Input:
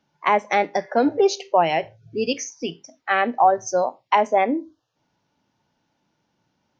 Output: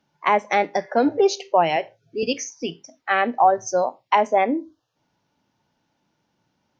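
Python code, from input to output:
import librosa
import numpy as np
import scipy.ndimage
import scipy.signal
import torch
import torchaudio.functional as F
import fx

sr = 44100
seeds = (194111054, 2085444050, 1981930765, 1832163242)

y = fx.highpass(x, sr, hz=280.0, slope=12, at=(1.76, 2.23))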